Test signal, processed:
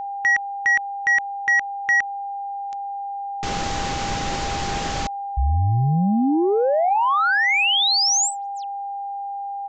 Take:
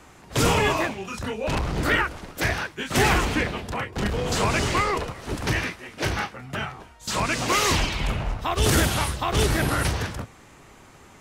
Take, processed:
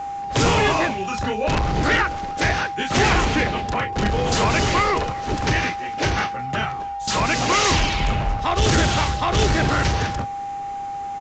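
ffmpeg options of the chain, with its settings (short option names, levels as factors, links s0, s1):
-af "asoftclip=type=tanh:threshold=0.133,aresample=16000,aresample=44100,aeval=exprs='val(0)+0.0251*sin(2*PI*800*n/s)':c=same,volume=1.88"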